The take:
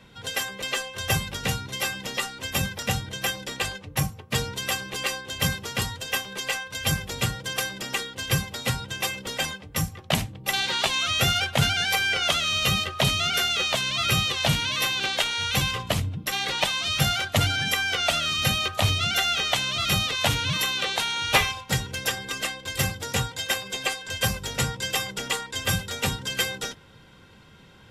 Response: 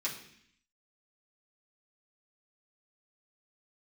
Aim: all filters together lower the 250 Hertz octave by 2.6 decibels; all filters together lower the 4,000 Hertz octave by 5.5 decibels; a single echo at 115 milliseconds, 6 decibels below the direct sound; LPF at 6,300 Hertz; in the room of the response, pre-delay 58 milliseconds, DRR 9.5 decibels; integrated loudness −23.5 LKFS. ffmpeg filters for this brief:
-filter_complex "[0:a]lowpass=6300,equalizer=frequency=250:width_type=o:gain=-4.5,equalizer=frequency=4000:width_type=o:gain=-7,aecho=1:1:115:0.501,asplit=2[link_01][link_02];[1:a]atrim=start_sample=2205,adelay=58[link_03];[link_02][link_03]afir=irnorm=-1:irlink=0,volume=-13dB[link_04];[link_01][link_04]amix=inputs=2:normalize=0,volume=3.5dB"

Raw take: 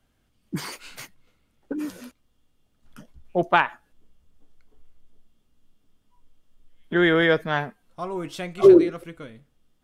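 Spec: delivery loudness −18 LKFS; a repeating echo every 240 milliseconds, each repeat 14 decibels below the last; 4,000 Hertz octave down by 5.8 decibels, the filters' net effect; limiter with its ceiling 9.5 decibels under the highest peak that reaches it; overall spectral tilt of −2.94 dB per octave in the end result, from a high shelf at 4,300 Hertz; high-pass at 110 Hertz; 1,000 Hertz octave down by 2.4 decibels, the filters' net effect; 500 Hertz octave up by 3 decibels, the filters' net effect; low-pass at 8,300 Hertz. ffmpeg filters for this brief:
ffmpeg -i in.wav -af "highpass=110,lowpass=8300,equalizer=frequency=500:width_type=o:gain=5.5,equalizer=frequency=1000:width_type=o:gain=-5,equalizer=frequency=4000:width_type=o:gain=-6,highshelf=frequency=4300:gain=-3,alimiter=limit=-11dB:level=0:latency=1,aecho=1:1:240|480:0.2|0.0399,volume=6.5dB" out.wav

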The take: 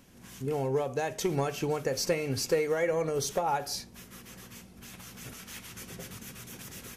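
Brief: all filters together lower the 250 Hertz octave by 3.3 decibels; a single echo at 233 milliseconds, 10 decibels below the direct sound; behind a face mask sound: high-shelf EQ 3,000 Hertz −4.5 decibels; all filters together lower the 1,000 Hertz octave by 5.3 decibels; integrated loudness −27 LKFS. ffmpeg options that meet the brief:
ffmpeg -i in.wav -af "equalizer=frequency=250:width_type=o:gain=-4.5,equalizer=frequency=1000:width_type=o:gain=-6.5,highshelf=frequency=3000:gain=-4.5,aecho=1:1:233:0.316,volume=5.5dB" out.wav

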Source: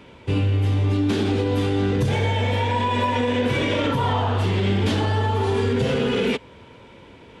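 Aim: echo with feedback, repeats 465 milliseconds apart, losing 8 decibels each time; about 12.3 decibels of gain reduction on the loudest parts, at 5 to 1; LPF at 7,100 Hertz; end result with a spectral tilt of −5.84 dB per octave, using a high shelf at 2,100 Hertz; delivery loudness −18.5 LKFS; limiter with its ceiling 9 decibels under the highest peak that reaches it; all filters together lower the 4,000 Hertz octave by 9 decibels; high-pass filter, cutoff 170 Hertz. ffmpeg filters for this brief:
ffmpeg -i in.wav -af "highpass=170,lowpass=7100,highshelf=frequency=2100:gain=-7,equalizer=frequency=4000:width_type=o:gain=-5.5,acompressor=threshold=-34dB:ratio=5,alimiter=level_in=9dB:limit=-24dB:level=0:latency=1,volume=-9dB,aecho=1:1:465|930|1395|1860|2325:0.398|0.159|0.0637|0.0255|0.0102,volume=22.5dB" out.wav

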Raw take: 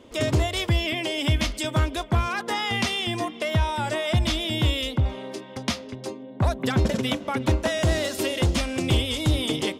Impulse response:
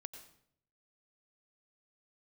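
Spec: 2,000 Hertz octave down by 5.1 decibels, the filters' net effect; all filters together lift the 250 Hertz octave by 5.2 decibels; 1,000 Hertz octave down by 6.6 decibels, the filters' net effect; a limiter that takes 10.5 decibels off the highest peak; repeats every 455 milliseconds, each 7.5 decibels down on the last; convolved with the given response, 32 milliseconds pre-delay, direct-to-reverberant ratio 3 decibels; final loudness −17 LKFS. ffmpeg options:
-filter_complex "[0:a]equalizer=frequency=250:width_type=o:gain=7,equalizer=frequency=1000:width_type=o:gain=-8.5,equalizer=frequency=2000:width_type=o:gain=-4.5,alimiter=limit=-18.5dB:level=0:latency=1,aecho=1:1:455|910|1365|1820|2275:0.422|0.177|0.0744|0.0312|0.0131,asplit=2[link_01][link_02];[1:a]atrim=start_sample=2205,adelay=32[link_03];[link_02][link_03]afir=irnorm=-1:irlink=0,volume=1.5dB[link_04];[link_01][link_04]amix=inputs=2:normalize=0,volume=8.5dB"

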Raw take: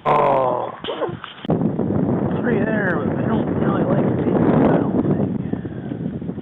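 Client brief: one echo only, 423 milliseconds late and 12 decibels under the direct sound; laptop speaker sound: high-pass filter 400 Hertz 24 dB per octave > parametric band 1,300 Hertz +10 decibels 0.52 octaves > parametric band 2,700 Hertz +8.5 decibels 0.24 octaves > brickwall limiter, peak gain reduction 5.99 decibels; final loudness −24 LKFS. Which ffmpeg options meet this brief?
ffmpeg -i in.wav -af "highpass=frequency=400:width=0.5412,highpass=frequency=400:width=1.3066,equalizer=frequency=1300:width_type=o:width=0.52:gain=10,equalizer=frequency=2700:width_type=o:width=0.24:gain=8.5,aecho=1:1:423:0.251,volume=-1.5dB,alimiter=limit=-11.5dB:level=0:latency=1" out.wav

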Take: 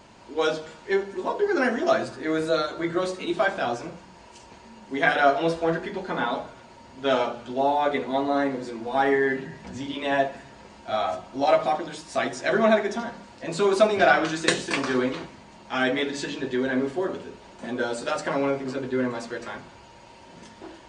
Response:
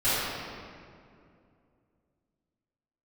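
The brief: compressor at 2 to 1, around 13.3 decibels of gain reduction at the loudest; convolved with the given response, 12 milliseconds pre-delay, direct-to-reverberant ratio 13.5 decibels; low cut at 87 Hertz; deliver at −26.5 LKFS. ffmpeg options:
-filter_complex "[0:a]highpass=87,acompressor=threshold=-39dB:ratio=2,asplit=2[link_01][link_02];[1:a]atrim=start_sample=2205,adelay=12[link_03];[link_02][link_03]afir=irnorm=-1:irlink=0,volume=-29dB[link_04];[link_01][link_04]amix=inputs=2:normalize=0,volume=9dB"

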